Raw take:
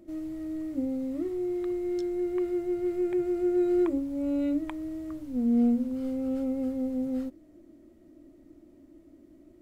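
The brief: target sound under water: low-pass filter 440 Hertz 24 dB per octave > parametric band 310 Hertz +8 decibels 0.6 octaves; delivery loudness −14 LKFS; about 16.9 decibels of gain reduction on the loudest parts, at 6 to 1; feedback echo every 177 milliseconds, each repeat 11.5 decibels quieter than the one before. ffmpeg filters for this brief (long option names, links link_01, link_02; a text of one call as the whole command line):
ffmpeg -i in.wav -af "acompressor=threshold=-40dB:ratio=6,lowpass=frequency=440:width=0.5412,lowpass=frequency=440:width=1.3066,equalizer=frequency=310:width_type=o:width=0.6:gain=8,aecho=1:1:177|354|531:0.266|0.0718|0.0194,volume=22.5dB" out.wav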